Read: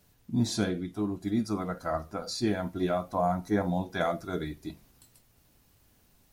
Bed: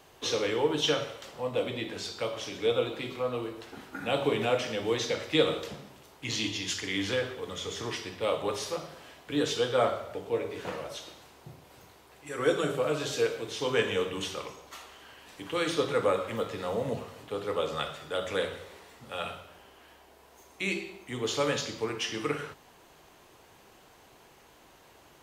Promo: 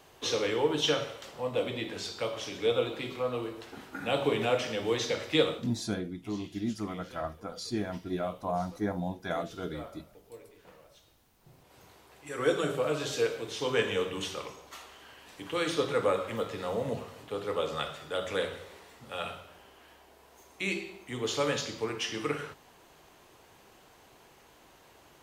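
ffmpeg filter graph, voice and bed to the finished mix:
-filter_complex "[0:a]adelay=5300,volume=-4.5dB[a];[1:a]volume=17.5dB,afade=t=out:st=5.39:d=0.33:silence=0.11885,afade=t=in:st=11.35:d=0.58:silence=0.125893[b];[a][b]amix=inputs=2:normalize=0"

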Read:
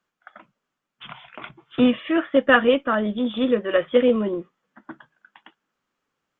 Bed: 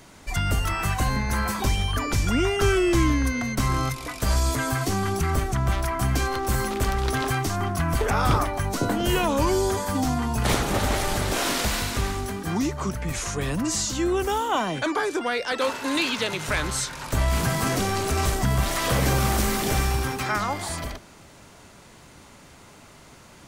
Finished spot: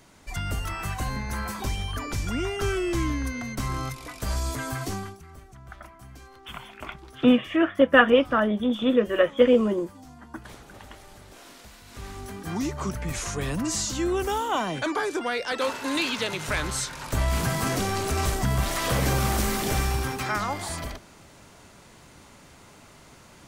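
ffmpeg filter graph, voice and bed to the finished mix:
-filter_complex "[0:a]adelay=5450,volume=-0.5dB[a];[1:a]volume=15dB,afade=t=out:st=4.93:d=0.24:silence=0.141254,afade=t=in:st=11.84:d=0.95:silence=0.0891251[b];[a][b]amix=inputs=2:normalize=0"

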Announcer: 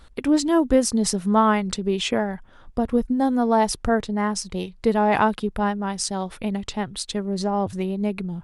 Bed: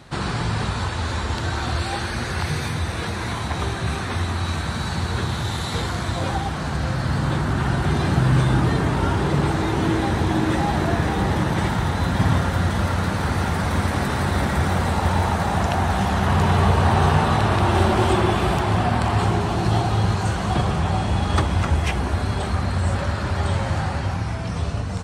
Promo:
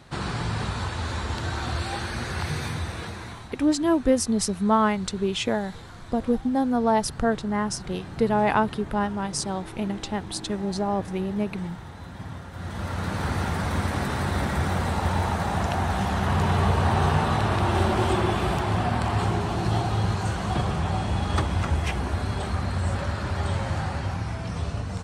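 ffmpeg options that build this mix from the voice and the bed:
-filter_complex "[0:a]adelay=3350,volume=-2.5dB[a];[1:a]volume=9.5dB,afade=t=out:st=2.71:d=0.83:silence=0.199526,afade=t=in:st=12.51:d=0.72:silence=0.199526[b];[a][b]amix=inputs=2:normalize=0"

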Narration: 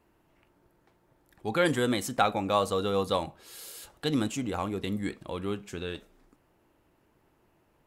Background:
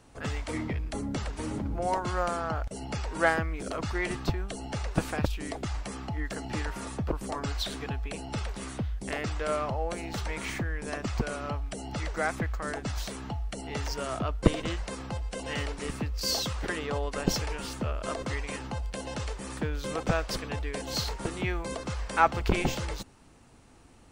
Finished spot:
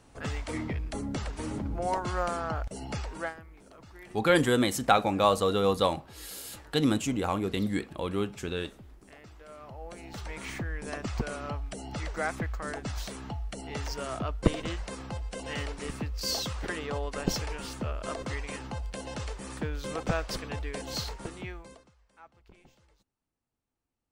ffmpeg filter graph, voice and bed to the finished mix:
-filter_complex "[0:a]adelay=2700,volume=2.5dB[a];[1:a]volume=16dB,afade=t=out:st=2.98:d=0.36:silence=0.125893,afade=t=in:st=9.55:d=1.22:silence=0.141254,afade=t=out:st=20.85:d=1.06:silence=0.0334965[b];[a][b]amix=inputs=2:normalize=0"

